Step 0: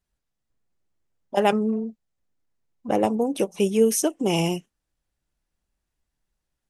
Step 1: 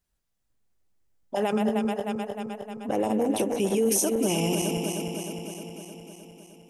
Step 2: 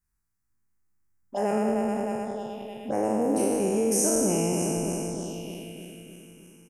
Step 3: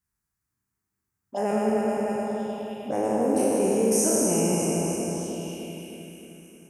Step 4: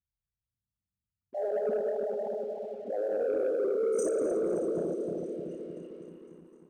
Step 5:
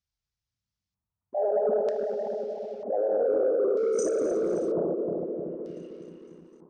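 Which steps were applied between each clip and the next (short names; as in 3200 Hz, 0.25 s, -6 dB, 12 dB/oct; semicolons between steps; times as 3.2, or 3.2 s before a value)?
regenerating reverse delay 0.154 s, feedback 80%, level -8.5 dB; limiter -16 dBFS, peak gain reduction 10.5 dB; high shelf 6900 Hz +6 dB
spectral trails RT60 2.21 s; envelope phaser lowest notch 570 Hz, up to 3500 Hz, full sweep at -23 dBFS; echo 0.6 s -17.5 dB; gain -3 dB
HPF 70 Hz; plate-style reverb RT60 2.1 s, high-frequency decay 0.75×, pre-delay 0.115 s, DRR 3 dB
formant sharpening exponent 3; sample leveller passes 1; thinning echo 0.254 s, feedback 77%, high-pass 420 Hz, level -21 dB; gain -8.5 dB
LFO low-pass square 0.53 Hz 970–5400 Hz; gain +2.5 dB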